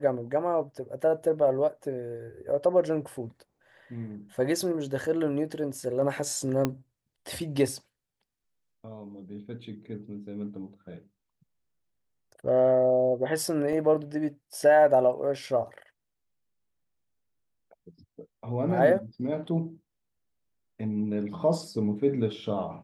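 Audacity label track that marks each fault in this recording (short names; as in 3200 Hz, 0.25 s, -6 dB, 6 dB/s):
6.650000	6.650000	pop -12 dBFS
13.730000	13.730000	gap 2.4 ms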